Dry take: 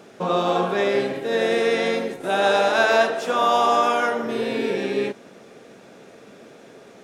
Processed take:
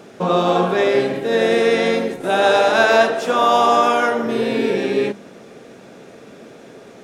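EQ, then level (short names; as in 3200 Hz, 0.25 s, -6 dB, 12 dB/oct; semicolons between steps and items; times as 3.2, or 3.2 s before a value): low shelf 270 Hz +5 dB; notches 50/100/150/200 Hz; +3.5 dB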